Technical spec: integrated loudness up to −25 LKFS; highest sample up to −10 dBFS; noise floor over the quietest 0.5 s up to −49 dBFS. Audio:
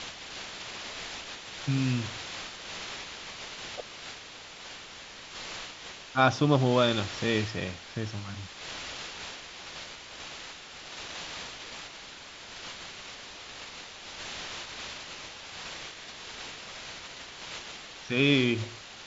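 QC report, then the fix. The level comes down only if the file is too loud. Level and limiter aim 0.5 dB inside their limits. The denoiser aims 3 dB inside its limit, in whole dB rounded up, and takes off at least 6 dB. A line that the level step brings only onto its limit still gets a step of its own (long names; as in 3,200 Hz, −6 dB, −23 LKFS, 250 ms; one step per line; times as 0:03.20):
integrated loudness −33.0 LKFS: in spec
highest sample −8.5 dBFS: out of spec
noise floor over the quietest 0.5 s −46 dBFS: out of spec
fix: broadband denoise 6 dB, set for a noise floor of −46 dBFS
brickwall limiter −10.5 dBFS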